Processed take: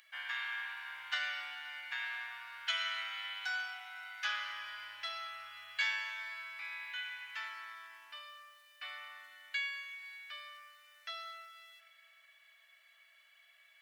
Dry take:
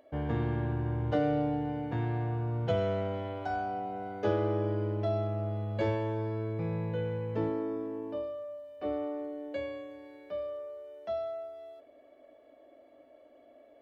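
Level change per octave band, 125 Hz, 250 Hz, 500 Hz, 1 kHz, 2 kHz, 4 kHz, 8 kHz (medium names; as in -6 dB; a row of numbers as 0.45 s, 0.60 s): under -40 dB, under -40 dB, -31.0 dB, -9.0 dB, +9.5 dB, +12.5 dB, no reading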